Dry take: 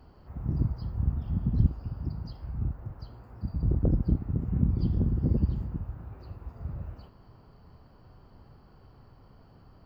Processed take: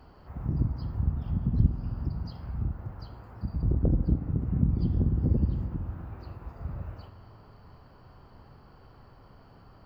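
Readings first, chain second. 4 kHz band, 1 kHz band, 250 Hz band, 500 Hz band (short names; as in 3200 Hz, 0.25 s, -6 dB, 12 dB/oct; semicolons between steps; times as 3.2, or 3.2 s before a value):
n/a, +3.0 dB, +0.5 dB, +0.5 dB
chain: high shelf 2500 Hz -8.5 dB; spring tank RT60 2.9 s, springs 47 ms, chirp 70 ms, DRR 11.5 dB; mismatched tape noise reduction encoder only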